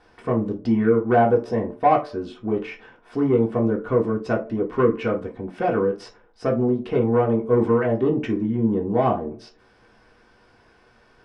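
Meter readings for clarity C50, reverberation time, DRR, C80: 12.5 dB, 0.45 s, -3.0 dB, 19.5 dB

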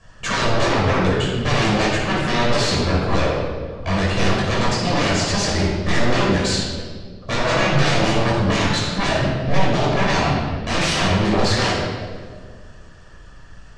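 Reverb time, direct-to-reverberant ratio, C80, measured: 1.8 s, -5.5 dB, 2.0 dB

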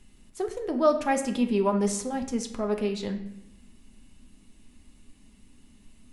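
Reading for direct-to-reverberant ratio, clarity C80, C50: 4.0 dB, 12.5 dB, 9.5 dB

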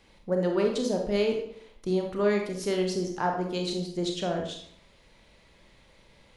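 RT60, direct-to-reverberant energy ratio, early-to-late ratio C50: 0.65 s, 2.0 dB, 5.0 dB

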